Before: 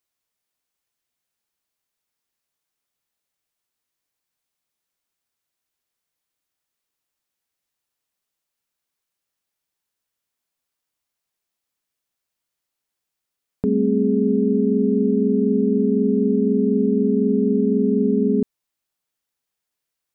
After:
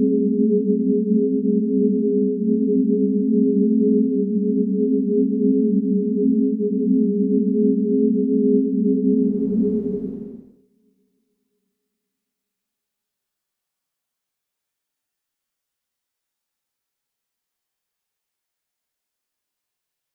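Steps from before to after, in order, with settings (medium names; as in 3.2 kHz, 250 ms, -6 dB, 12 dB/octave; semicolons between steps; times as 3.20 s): Paulstretch 7.4×, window 0.25 s, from 17.11 s; two-slope reverb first 0.56 s, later 3.8 s, from -22 dB, DRR 16 dB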